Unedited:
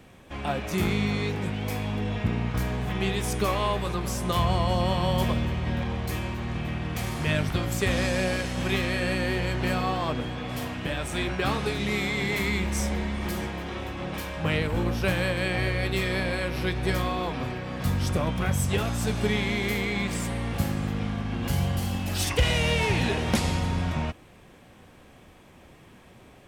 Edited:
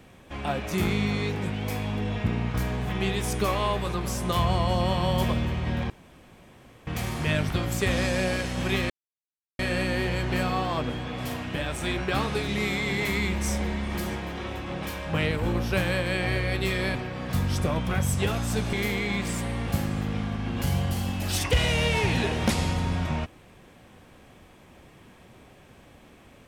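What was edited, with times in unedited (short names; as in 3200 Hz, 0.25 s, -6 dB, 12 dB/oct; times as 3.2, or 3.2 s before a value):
5.9–6.87 room tone
8.9 insert silence 0.69 s
16.26–17.46 cut
19.24–19.59 cut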